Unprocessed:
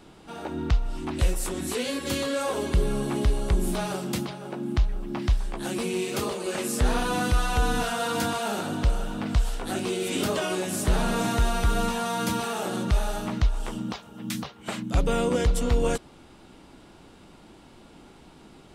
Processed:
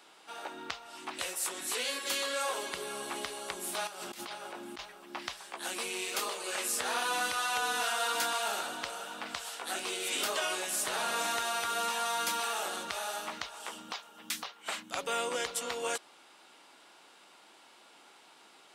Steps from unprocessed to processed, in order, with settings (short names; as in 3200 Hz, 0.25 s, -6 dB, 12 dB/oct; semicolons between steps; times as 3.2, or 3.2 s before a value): Bessel high-pass 990 Hz, order 2; 3.87–4.92 negative-ratio compressor -43 dBFS, ratio -1